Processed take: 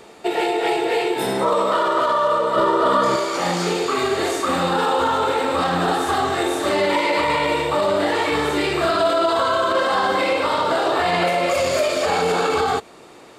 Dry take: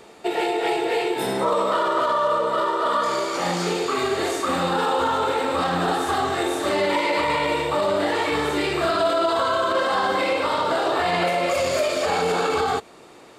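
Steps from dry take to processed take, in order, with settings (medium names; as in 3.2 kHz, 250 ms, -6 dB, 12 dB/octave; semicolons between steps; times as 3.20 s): 2.56–3.16 s: bass shelf 390 Hz +11.5 dB; trim +2.5 dB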